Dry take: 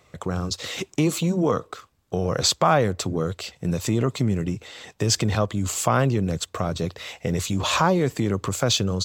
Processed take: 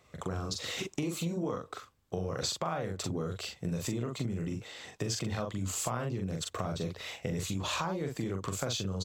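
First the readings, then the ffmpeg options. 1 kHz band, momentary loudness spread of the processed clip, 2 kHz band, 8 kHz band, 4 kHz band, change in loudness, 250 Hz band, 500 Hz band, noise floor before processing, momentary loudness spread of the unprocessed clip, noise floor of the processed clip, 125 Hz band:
-13.0 dB, 6 LU, -11.0 dB, -10.0 dB, -10.5 dB, -11.5 dB, -11.0 dB, -12.0 dB, -62 dBFS, 10 LU, -63 dBFS, -11.0 dB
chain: -filter_complex "[0:a]asplit=2[a][b];[b]adelay=42,volume=-4dB[c];[a][c]amix=inputs=2:normalize=0,acompressor=threshold=-24dB:ratio=6,volume=-6.5dB"

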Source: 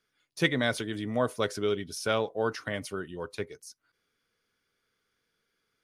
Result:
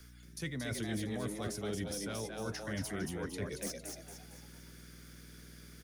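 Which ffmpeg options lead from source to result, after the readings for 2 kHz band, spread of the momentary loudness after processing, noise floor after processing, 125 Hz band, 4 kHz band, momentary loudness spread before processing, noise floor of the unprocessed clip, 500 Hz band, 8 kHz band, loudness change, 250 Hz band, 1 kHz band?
-10.5 dB, 16 LU, -55 dBFS, -2.5 dB, -8.5 dB, 12 LU, -79 dBFS, -11.0 dB, +0.5 dB, -8.5 dB, -5.0 dB, -12.0 dB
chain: -filter_complex "[0:a]equalizer=f=1.8k:w=1.5:g=4,areverse,acompressor=threshold=-43dB:ratio=6,areverse,aeval=exprs='val(0)+0.000447*(sin(2*PI*60*n/s)+sin(2*PI*2*60*n/s)/2+sin(2*PI*3*60*n/s)/3+sin(2*PI*4*60*n/s)/4+sin(2*PI*5*60*n/s)/5)':c=same,acrossover=split=250|5300[a][b][c];[c]aeval=exprs='0.0112*sin(PI/2*2.82*val(0)/0.0112)':c=same[d];[a][b][d]amix=inputs=3:normalize=0,acrossover=split=230[e][f];[f]acompressor=threshold=-60dB:ratio=2.5[g];[e][g]amix=inputs=2:normalize=0,asplit=6[h][i][j][k][l][m];[i]adelay=228,afreqshift=100,volume=-4dB[n];[j]adelay=456,afreqshift=200,volume=-11.3dB[o];[k]adelay=684,afreqshift=300,volume=-18.7dB[p];[l]adelay=912,afreqshift=400,volume=-26dB[q];[m]adelay=1140,afreqshift=500,volume=-33.3dB[r];[h][n][o][p][q][r]amix=inputs=6:normalize=0,volume=12.5dB"

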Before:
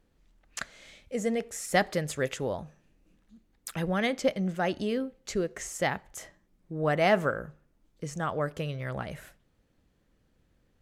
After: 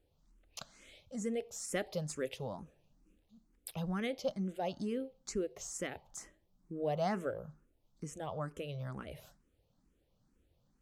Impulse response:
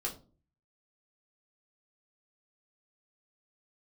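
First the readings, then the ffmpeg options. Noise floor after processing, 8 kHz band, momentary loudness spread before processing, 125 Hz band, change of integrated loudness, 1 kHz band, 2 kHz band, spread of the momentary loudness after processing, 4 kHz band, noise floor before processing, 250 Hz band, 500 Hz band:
-76 dBFS, -5.5 dB, 16 LU, -8.0 dB, -9.0 dB, -10.5 dB, -14.5 dB, 14 LU, -9.5 dB, -70 dBFS, -7.5 dB, -9.0 dB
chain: -filter_complex "[0:a]asplit=2[a][b];[b]acompressor=threshold=-38dB:ratio=6,volume=-1.5dB[c];[a][c]amix=inputs=2:normalize=0,equalizer=f=1.8k:t=o:w=0.78:g=-8,asplit=2[d][e];[e]afreqshift=2.2[f];[d][f]amix=inputs=2:normalize=1,volume=-7dB"

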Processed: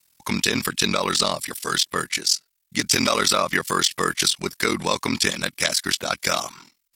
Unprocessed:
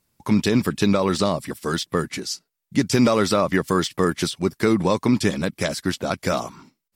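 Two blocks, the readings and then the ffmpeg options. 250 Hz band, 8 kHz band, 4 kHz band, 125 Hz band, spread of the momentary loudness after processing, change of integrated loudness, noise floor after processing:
-8.0 dB, +9.0 dB, +8.0 dB, -8.5 dB, 5 LU, +0.5 dB, -72 dBFS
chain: -af "aeval=exprs='val(0)*sin(2*PI*21*n/s)':c=same,tiltshelf=f=970:g=-9.5,acontrast=49,volume=-2.5dB"

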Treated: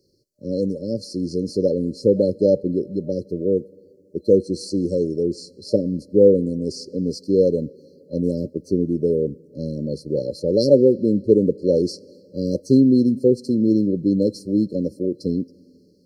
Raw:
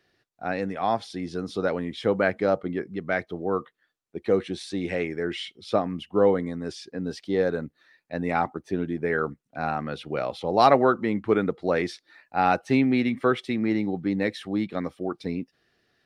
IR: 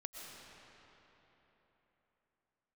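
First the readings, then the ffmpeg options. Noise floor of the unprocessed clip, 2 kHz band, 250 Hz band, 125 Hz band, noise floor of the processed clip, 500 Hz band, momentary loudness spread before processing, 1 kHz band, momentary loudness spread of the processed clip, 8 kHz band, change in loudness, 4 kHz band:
-75 dBFS, under -40 dB, +7.5 dB, +7.5 dB, -54 dBFS, +7.0 dB, 11 LU, under -40 dB, 12 LU, n/a, +6.0 dB, +0.5 dB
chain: -filter_complex "[0:a]asplit=2[a][b];[1:a]atrim=start_sample=2205,asetrate=57330,aresample=44100[c];[b][c]afir=irnorm=-1:irlink=0,volume=-18dB[d];[a][d]amix=inputs=2:normalize=0,afftfilt=real='re*(1-between(b*sr/4096,600,4100))':imag='im*(1-between(b*sr/4096,600,4100))':win_size=4096:overlap=0.75,volume=7dB"

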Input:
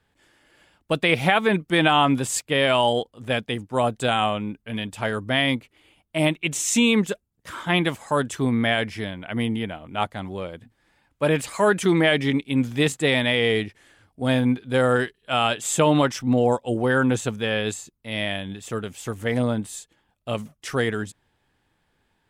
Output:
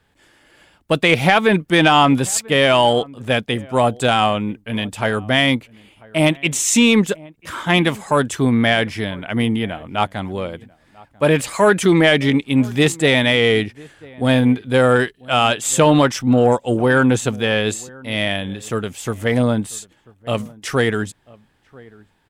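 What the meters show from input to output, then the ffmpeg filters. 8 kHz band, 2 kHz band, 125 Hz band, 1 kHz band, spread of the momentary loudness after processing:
+6.5 dB, +5.5 dB, +6.0 dB, +5.5 dB, 12 LU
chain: -filter_complex "[0:a]asplit=2[a][b];[b]adelay=991.3,volume=-24dB,highshelf=f=4k:g=-22.3[c];[a][c]amix=inputs=2:normalize=0,acontrast=64"

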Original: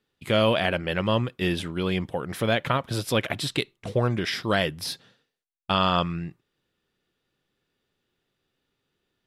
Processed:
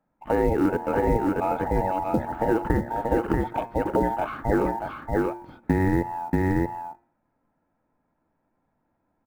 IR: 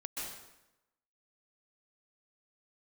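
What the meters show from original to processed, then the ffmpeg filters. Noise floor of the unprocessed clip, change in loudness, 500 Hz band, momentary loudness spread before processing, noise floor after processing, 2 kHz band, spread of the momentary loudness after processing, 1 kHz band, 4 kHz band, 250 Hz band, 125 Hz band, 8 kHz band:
-79 dBFS, +0.5 dB, +2.0 dB, 10 LU, -75 dBFS, -4.5 dB, 6 LU, +3.5 dB, under -20 dB, +4.5 dB, -0.5 dB, under -10 dB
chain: -af "afftfilt=real='real(if(between(b,1,1008),(2*floor((b-1)/48)+1)*48-b,b),0)':imag='imag(if(between(b,1,1008),(2*floor((b-1)/48)+1)*48-b,b),0)*if(between(b,1,1008),-1,1)':win_size=2048:overlap=0.75,lowpass=f=1.6k:w=0.5412,lowpass=f=1.6k:w=1.3066,lowshelf=f=430:t=q:w=1.5:g=11.5,bandreject=f=390:w=12,aecho=1:1:634:0.631,acompressor=threshold=-21dB:ratio=4,bandreject=f=116.4:t=h:w=4,bandreject=f=232.8:t=h:w=4,bandreject=f=349.2:t=h:w=4,bandreject=f=465.6:t=h:w=4,bandreject=f=582:t=h:w=4,bandreject=f=698.4:t=h:w=4,bandreject=f=814.8:t=h:w=4,bandreject=f=931.2:t=h:w=4,bandreject=f=1.0476k:t=h:w=4,bandreject=f=1.164k:t=h:w=4,bandreject=f=1.2804k:t=h:w=4,bandreject=f=1.3968k:t=h:w=4,bandreject=f=1.5132k:t=h:w=4,bandreject=f=1.6296k:t=h:w=4,bandreject=f=1.746k:t=h:w=4,bandreject=f=1.8624k:t=h:w=4,bandreject=f=1.9788k:t=h:w=4,bandreject=f=2.0952k:t=h:w=4,bandreject=f=2.2116k:t=h:w=4,bandreject=f=2.328k:t=h:w=4,bandreject=f=2.4444k:t=h:w=4,bandreject=f=2.5608k:t=h:w=4,acrusher=bits=8:mode=log:mix=0:aa=0.000001,volume=2.5dB"

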